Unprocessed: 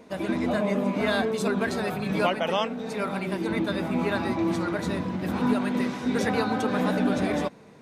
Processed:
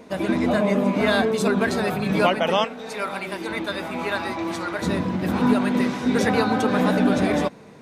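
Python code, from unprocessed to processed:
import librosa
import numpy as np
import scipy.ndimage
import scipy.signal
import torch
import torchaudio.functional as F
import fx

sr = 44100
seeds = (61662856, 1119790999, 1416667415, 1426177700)

y = fx.peak_eq(x, sr, hz=160.0, db=-12.5, octaves=2.7, at=(2.64, 4.82))
y = y * librosa.db_to_amplitude(5.0)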